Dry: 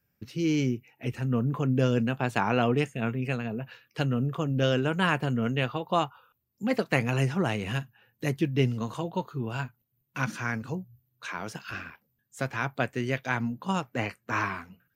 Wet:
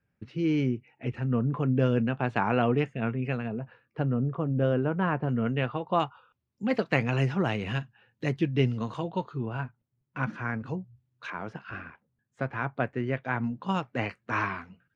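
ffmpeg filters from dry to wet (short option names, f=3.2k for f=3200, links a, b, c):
-af "asetnsamples=n=441:p=0,asendcmd='3.59 lowpass f 1200;5.29 lowpass f 2300;6 lowpass f 4100;9.46 lowpass f 1800;10.66 lowpass f 3400;11.3 lowpass f 1800;13.44 lowpass f 3800',lowpass=2.5k"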